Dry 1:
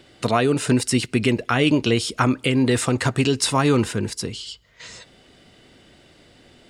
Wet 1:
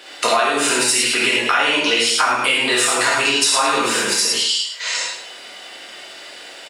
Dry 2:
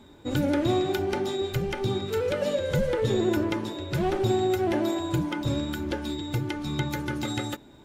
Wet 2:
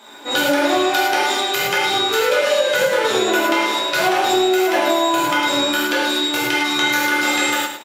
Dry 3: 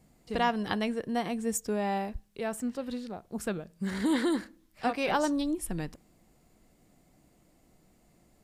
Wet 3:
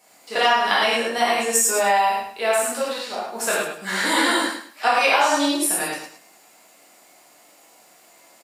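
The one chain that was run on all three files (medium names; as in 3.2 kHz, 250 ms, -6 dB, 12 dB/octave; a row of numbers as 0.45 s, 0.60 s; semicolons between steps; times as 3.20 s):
high-pass 740 Hz 12 dB/octave; on a send: feedback delay 105 ms, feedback 26%, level -9 dB; on the sum: gated-style reverb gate 140 ms flat, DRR -7 dB; compression, threshold -25 dBFS; peak normalisation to -3 dBFS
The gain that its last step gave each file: +10.5 dB, +12.0 dB, +11.0 dB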